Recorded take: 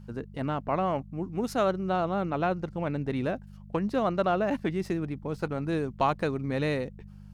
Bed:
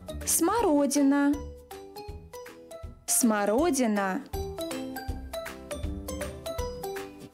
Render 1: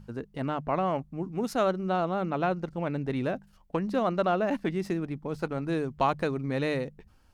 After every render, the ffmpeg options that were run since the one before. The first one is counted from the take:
-af "bandreject=f=50:t=h:w=4,bandreject=f=100:t=h:w=4,bandreject=f=150:t=h:w=4,bandreject=f=200:t=h:w=4"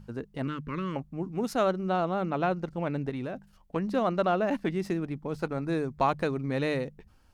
-filter_complex "[0:a]asettb=1/sr,asplit=3[a][b][c];[a]atrim=end=0.474[d];[b]atrim=start=0.47:end=0.96,asetpts=PTS-STARTPTS,afade=t=in:d=0.004:c=qsin,afade=t=out:st=0.486:d=0.004:c=qsin,asuperstop=centerf=720:order=4:qfactor=0.81[e];[c]atrim=start=0.956[f];[d][e]acrossfade=d=0.004:c1=hsin:c2=qsin[g];[g][f]acrossfade=d=0.004:c1=qsin:c2=hsin,asettb=1/sr,asplit=3[h][i][j];[h]atrim=end=3.094[k];[i]atrim=start=3.09:end=3.76,asetpts=PTS-STARTPTS,afade=t=in:d=0.004:c=qsin,afade=t=out:st=0.666:d=0.004:c=qsin,acompressor=threshold=-30dB:ratio=6:attack=3.2:release=140:knee=1:detection=peak[l];[j]atrim=start=3.756[m];[k][l]acrossfade=d=0.004:c1=hsin:c2=qsin[n];[n][m]acrossfade=d=0.004:c1=qsin:c2=hsin,asettb=1/sr,asplit=3[o][p][q];[o]atrim=end=5.504[r];[p]atrim=start=5.5:end=6.08,asetpts=PTS-STARTPTS,afade=t=in:d=0.004:c=qsin,afade=t=out:st=0.576:d=0.004:c=qsin,bandreject=f=3k:w=5[s];[q]atrim=start=6.076[t];[r][s]acrossfade=d=0.004:c1=hsin:c2=qsin[u];[u][t]acrossfade=d=0.004:c1=qsin:c2=hsin"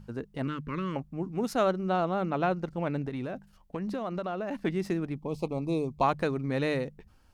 -filter_complex "[0:a]asettb=1/sr,asplit=3[a][b][c];[a]atrim=end=3.014[d];[b]atrim=start=3.01:end=4.61,asetpts=PTS-STARTPTS,afade=t=in:d=0.004:c=qsin,afade=t=out:st=1.596:d=0.004:c=qsin,acompressor=threshold=-29dB:ratio=6:attack=3.2:release=140:knee=1:detection=peak[e];[c]atrim=start=4.606[f];[d][e]acrossfade=d=0.004:c1=hsin:c2=qsin[g];[g][f]acrossfade=d=0.004:c1=qsin:c2=hsin,asettb=1/sr,asplit=3[h][i][j];[h]atrim=end=5.164[k];[i]atrim=start=5.16:end=6.03,asetpts=PTS-STARTPTS,afade=t=in:d=0.004:c=qsin,afade=t=out:st=0.866:d=0.004:c=qsin,asuperstop=centerf=1600:order=8:qfactor=1.5[l];[j]atrim=start=6.026[m];[k][l]acrossfade=d=0.004:c1=hsin:c2=qsin[n];[n][m]acrossfade=d=0.004:c1=qsin:c2=hsin"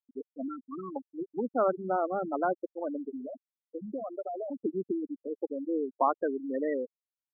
-af "highpass=f=230:w=0.5412,highpass=f=230:w=1.3066,afftfilt=real='re*gte(hypot(re,im),0.1)':imag='im*gte(hypot(re,im),0.1)':win_size=1024:overlap=0.75"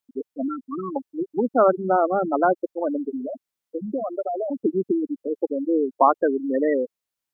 -af "volume=9.5dB"

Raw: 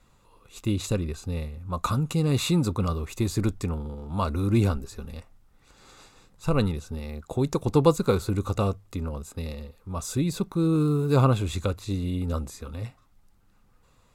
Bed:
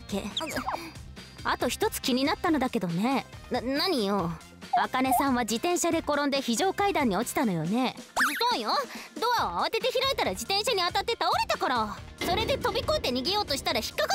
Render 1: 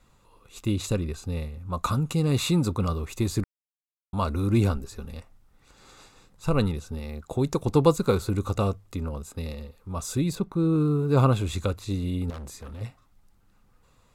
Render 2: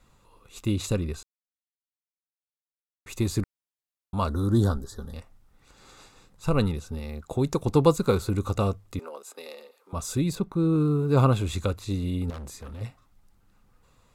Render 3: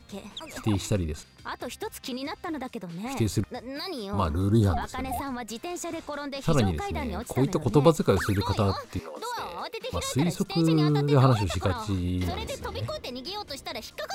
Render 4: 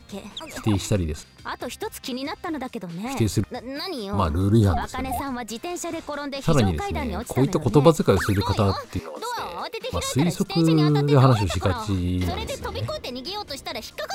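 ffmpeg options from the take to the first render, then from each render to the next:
-filter_complex "[0:a]asettb=1/sr,asplit=3[a][b][c];[a]atrim=end=10.354[d];[b]atrim=start=10.35:end=11.17,asetpts=PTS-STARTPTS,afade=t=in:d=0.004:c=qsin,afade=t=out:st=0.816:d=0.004:c=qsin,highshelf=f=3.2k:g=-10[e];[c]atrim=start=11.166[f];[d][e]acrossfade=d=0.004:c1=hsin:c2=qsin[g];[g][f]acrossfade=d=0.004:c1=qsin:c2=hsin,asettb=1/sr,asplit=3[h][i][j];[h]atrim=end=12.304[k];[i]atrim=start=12.3:end=12.81,asetpts=PTS-STARTPTS,afade=t=in:d=0.004:c=qsin,afade=t=out:st=0.506:d=0.004:c=qsin,volume=36dB,asoftclip=hard,volume=-36dB[l];[j]atrim=start=12.806[m];[k][l]acrossfade=d=0.004:c1=hsin:c2=qsin[n];[n][m]acrossfade=d=0.004:c1=qsin:c2=hsin,asplit=3[o][p][q];[o]atrim=end=3.44,asetpts=PTS-STARTPTS,afade=t=out:st=3.436:d=0.004:c=hsin[r];[p]atrim=start=3.44:end=4.13,asetpts=PTS-STARTPTS,volume=0[s];[q]atrim=start=4.13,asetpts=PTS-STARTPTS,afade=t=in:d=0.004:c=hsin[t];[r][s][t]concat=n=3:v=0:a=1"
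-filter_complex "[0:a]asettb=1/sr,asplit=3[a][b][c];[a]atrim=end=4.284[d];[b]atrim=start=4.28:end=5.14,asetpts=PTS-STARTPTS,afade=t=in:d=0.004:c=qsin,afade=t=out:st=0.856:d=0.004:c=qsin,asuperstop=centerf=2400:order=12:qfactor=2.1[e];[c]atrim=start=5.136[f];[d][e]acrossfade=d=0.004:c1=hsin:c2=qsin[g];[g][f]acrossfade=d=0.004:c1=qsin:c2=hsin,asettb=1/sr,asplit=3[h][i][j];[h]atrim=end=8.994[k];[i]atrim=start=8.99:end=9.93,asetpts=PTS-STARTPTS,afade=t=in:d=0.004:c=qsin,afade=t=out:st=0.936:d=0.004:c=qsin,highpass=f=390:w=0.5412,highpass=f=390:w=1.3066[l];[j]atrim=start=9.926[m];[k][l]acrossfade=d=0.004:c1=hsin:c2=qsin[n];[n][m]acrossfade=d=0.004:c1=qsin:c2=hsin,asplit=3[o][p][q];[o]atrim=end=1.23,asetpts=PTS-STARTPTS,afade=t=out:st=1.226:d=0.004:c=hsin[r];[p]atrim=start=1.23:end=3.06,asetpts=PTS-STARTPTS,volume=0[s];[q]atrim=start=3.06,asetpts=PTS-STARTPTS,afade=t=in:d=0.004:c=hsin[t];[r][s][t]concat=n=3:v=0:a=1"
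-filter_complex "[1:a]volume=-8dB[a];[0:a][a]amix=inputs=2:normalize=0"
-af "volume=4dB"

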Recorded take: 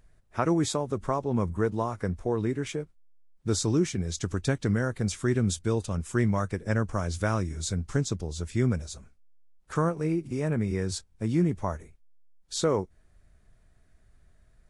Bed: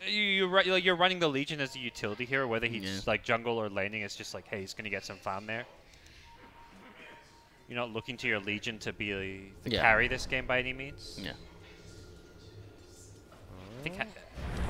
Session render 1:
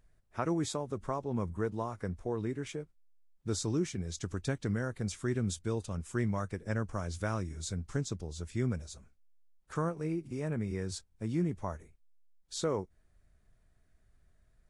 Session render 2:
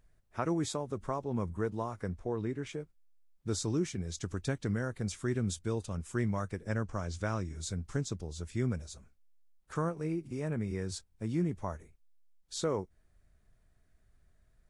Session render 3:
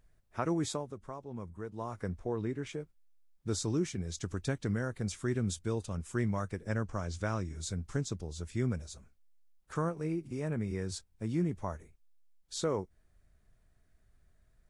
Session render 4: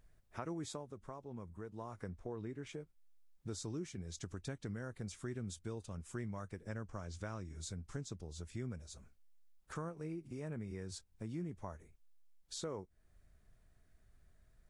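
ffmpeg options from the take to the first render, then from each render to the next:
-af "volume=-7dB"
-filter_complex "[0:a]asettb=1/sr,asplit=3[a][b][c];[a]atrim=end=2.164[d];[b]atrim=start=2.16:end=2.73,asetpts=PTS-STARTPTS,afade=t=in:d=0.004:c=qsin,afade=t=out:st=0.566:d=0.004:c=qsin,highshelf=f=9.4k:g=-11.5[e];[c]atrim=start=2.726[f];[d][e]acrossfade=d=0.004:c1=hsin:c2=qsin[g];[g][f]acrossfade=d=0.004:c1=qsin:c2=hsin,asettb=1/sr,asplit=3[h][i][j];[h]atrim=end=6.844[k];[i]atrim=start=6.84:end=7.55,asetpts=PTS-STARTPTS,afade=t=in:d=0.004:c=qsin,afade=t=out:st=0.706:d=0.004:c=qsin,lowpass=f=8.2k:w=0.5412,lowpass=f=8.2k:w=1.3066[l];[j]atrim=start=7.546[m];[k][l]acrossfade=d=0.004:c1=hsin:c2=qsin[n];[n][m]acrossfade=d=0.004:c1=qsin:c2=hsin"
-filter_complex "[0:a]asplit=3[a][b][c];[a]atrim=end=0.96,asetpts=PTS-STARTPTS,afade=t=out:st=0.75:d=0.21:silence=0.375837[d];[b]atrim=start=0.96:end=1.72,asetpts=PTS-STARTPTS,volume=-8.5dB[e];[c]atrim=start=1.72,asetpts=PTS-STARTPTS,afade=t=in:d=0.21:silence=0.375837[f];[d][e][f]concat=n=3:v=0:a=1"
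-af "acompressor=threshold=-48dB:ratio=2"

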